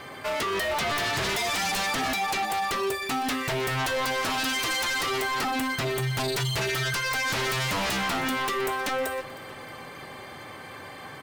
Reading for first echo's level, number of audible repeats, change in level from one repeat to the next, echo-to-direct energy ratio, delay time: -19.0 dB, 3, -6.5 dB, -18.0 dB, 314 ms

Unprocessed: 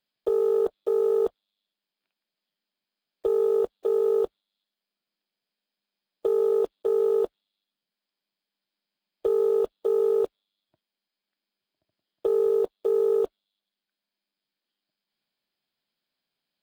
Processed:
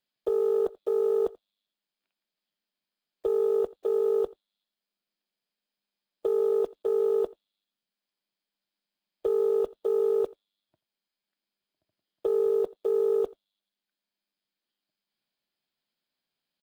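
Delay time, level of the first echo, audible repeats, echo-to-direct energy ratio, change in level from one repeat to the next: 85 ms, -22.5 dB, 1, -22.5 dB, no regular repeats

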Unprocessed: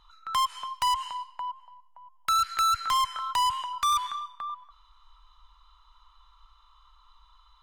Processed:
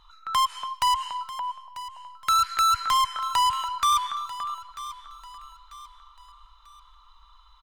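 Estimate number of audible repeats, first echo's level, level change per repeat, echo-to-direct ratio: 3, -15.5 dB, -8.0 dB, -15.0 dB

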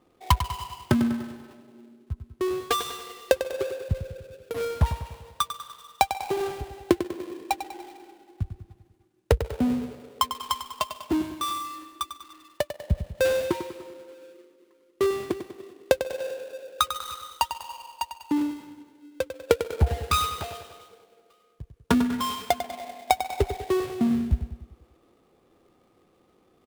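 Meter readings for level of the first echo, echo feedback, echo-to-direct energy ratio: -10.0 dB, 51%, -8.5 dB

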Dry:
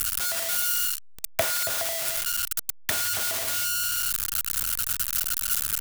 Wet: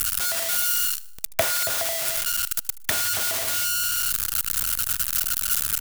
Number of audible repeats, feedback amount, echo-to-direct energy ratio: 3, 51%, -19.5 dB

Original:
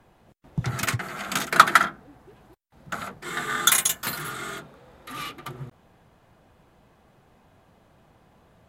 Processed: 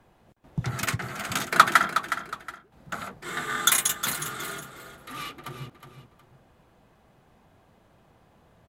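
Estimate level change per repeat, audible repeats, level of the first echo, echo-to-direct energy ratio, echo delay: -10.5 dB, 2, -10.0 dB, -9.5 dB, 365 ms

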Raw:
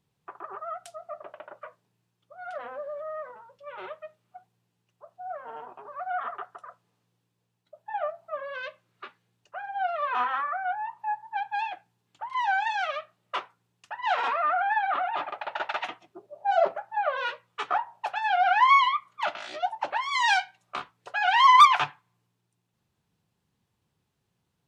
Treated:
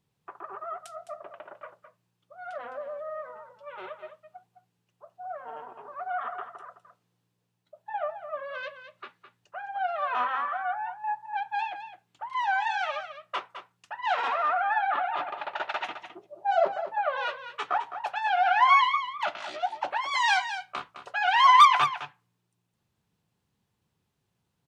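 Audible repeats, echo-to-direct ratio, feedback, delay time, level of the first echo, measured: 1, -10.5 dB, no regular repeats, 211 ms, -10.5 dB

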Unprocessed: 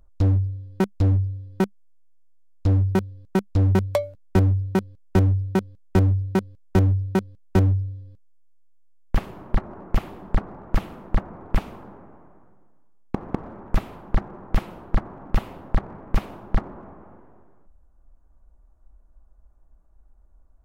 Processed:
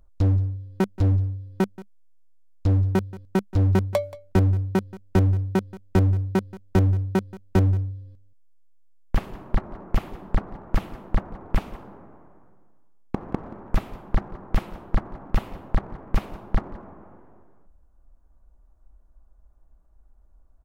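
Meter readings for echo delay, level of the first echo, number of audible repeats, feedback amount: 179 ms, -18.5 dB, 1, no regular repeats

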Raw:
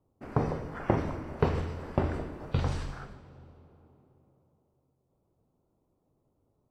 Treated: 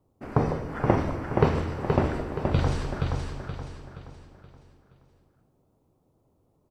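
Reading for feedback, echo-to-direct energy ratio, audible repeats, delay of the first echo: 40%, -3.5 dB, 4, 474 ms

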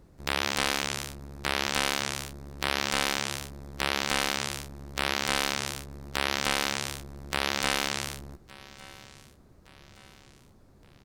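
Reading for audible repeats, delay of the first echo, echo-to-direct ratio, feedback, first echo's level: 3, 1167 ms, -20.0 dB, 46%, -21.0 dB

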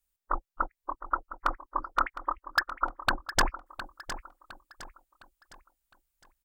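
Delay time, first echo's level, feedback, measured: 710 ms, -13.0 dB, 39%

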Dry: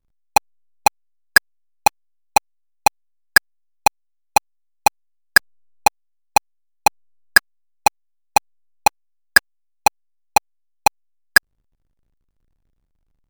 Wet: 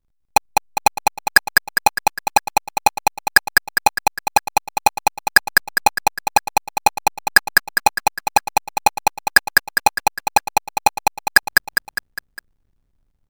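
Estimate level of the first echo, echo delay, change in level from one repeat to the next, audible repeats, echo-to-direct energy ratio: -3.0 dB, 203 ms, -5.5 dB, 5, -1.5 dB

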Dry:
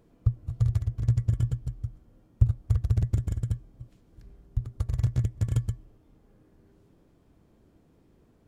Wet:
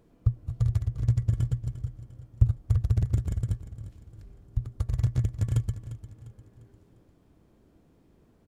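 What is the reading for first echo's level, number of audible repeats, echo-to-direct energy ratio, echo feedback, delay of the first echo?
-14.0 dB, 3, -13.0 dB, 42%, 350 ms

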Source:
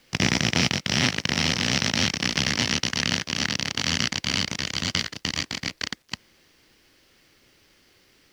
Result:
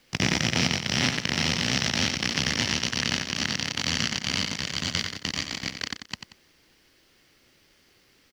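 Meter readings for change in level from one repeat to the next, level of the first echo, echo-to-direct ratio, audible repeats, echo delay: -9.5 dB, -8.0 dB, -7.5 dB, 2, 91 ms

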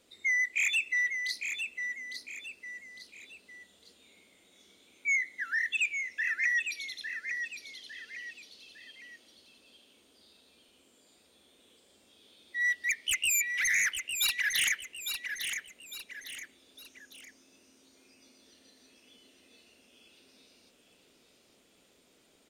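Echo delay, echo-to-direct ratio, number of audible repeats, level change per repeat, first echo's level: 855 ms, -6.5 dB, 3, -8.0 dB, -7.0 dB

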